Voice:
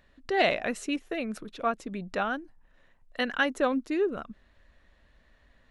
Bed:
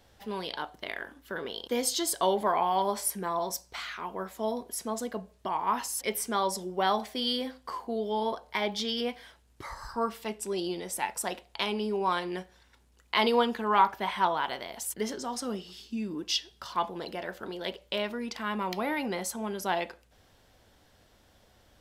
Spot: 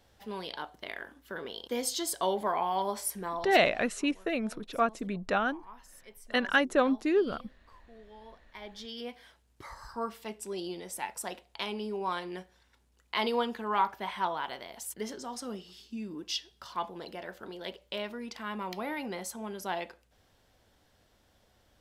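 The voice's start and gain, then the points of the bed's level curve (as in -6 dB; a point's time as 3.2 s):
3.15 s, +1.0 dB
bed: 3.32 s -3.5 dB
3.8 s -22 dB
8.22 s -22 dB
9.27 s -5 dB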